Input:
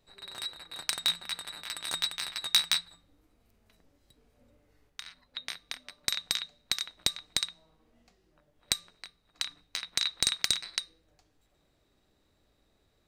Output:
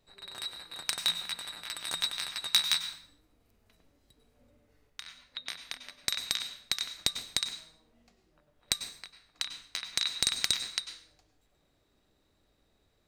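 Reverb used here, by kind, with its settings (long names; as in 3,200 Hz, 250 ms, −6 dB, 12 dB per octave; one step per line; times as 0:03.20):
dense smooth reverb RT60 0.56 s, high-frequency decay 0.9×, pre-delay 85 ms, DRR 9.5 dB
level −1 dB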